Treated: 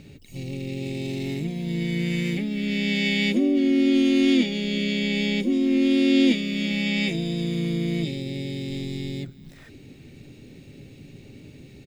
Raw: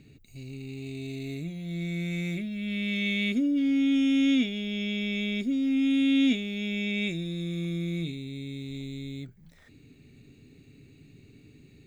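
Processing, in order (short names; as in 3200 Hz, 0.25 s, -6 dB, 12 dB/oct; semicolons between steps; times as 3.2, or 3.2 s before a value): in parallel at -1 dB: compressor, threshold -37 dBFS, peak gain reduction 16 dB; on the sum: harmoniser -3 st -11 dB, +5 st -8 dB, +12 st -17 dB; echo 0.39 s -21.5 dB; gain +2 dB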